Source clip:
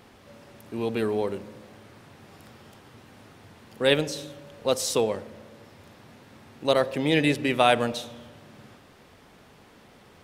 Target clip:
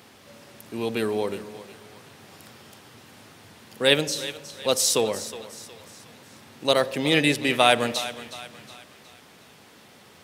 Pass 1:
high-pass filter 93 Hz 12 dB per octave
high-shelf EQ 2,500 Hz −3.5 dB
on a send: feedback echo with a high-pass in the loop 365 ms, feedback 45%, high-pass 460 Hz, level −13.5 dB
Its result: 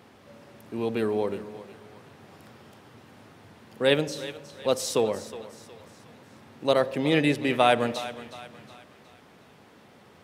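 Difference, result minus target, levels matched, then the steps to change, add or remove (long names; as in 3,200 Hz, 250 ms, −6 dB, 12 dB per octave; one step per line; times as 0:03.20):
4,000 Hz band −5.0 dB
change: high-shelf EQ 2,500 Hz +8.5 dB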